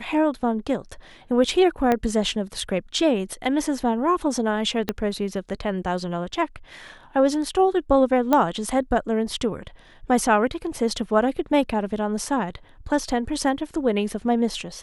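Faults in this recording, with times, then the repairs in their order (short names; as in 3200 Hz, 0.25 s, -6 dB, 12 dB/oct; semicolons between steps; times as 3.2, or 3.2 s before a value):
1.92 pop -9 dBFS
4.89 pop -9 dBFS
8.33 pop -7 dBFS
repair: de-click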